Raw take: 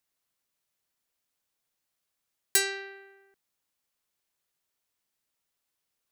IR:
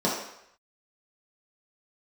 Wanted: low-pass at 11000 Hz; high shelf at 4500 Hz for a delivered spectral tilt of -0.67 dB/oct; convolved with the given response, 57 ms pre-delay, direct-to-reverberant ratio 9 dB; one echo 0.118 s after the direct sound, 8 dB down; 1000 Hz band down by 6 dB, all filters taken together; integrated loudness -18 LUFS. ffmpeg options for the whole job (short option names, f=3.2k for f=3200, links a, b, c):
-filter_complex "[0:a]lowpass=11k,equalizer=f=1k:t=o:g=-8.5,highshelf=f=4.5k:g=-8,aecho=1:1:118:0.398,asplit=2[a][b];[1:a]atrim=start_sample=2205,adelay=57[c];[b][c]afir=irnorm=-1:irlink=0,volume=-22.5dB[d];[a][d]amix=inputs=2:normalize=0,volume=15dB"